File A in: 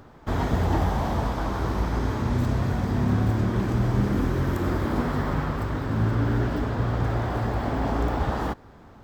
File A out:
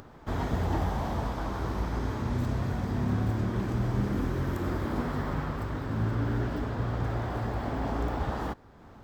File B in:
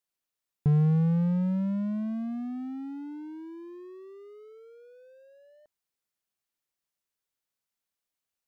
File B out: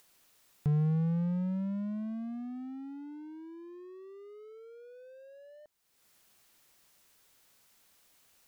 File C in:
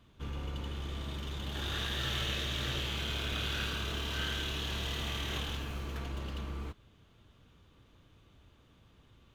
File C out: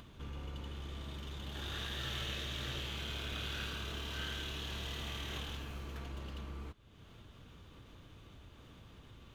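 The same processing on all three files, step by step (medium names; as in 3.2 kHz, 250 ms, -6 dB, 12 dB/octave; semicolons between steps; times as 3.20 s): upward compressor, threshold -38 dBFS; trim -5.5 dB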